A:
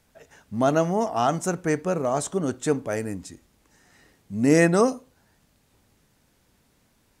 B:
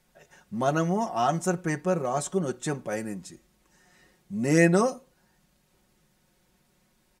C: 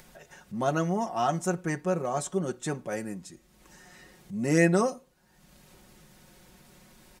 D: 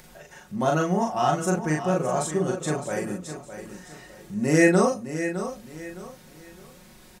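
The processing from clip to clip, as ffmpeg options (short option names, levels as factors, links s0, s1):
-af "aecho=1:1:5.5:0.75,volume=0.596"
-af "acompressor=mode=upward:threshold=0.01:ratio=2.5,volume=0.794"
-filter_complex "[0:a]asplit=2[s0][s1];[s1]adelay=39,volume=0.794[s2];[s0][s2]amix=inputs=2:normalize=0,aecho=1:1:611|1222|1833:0.299|0.0925|0.0287,volume=1.33"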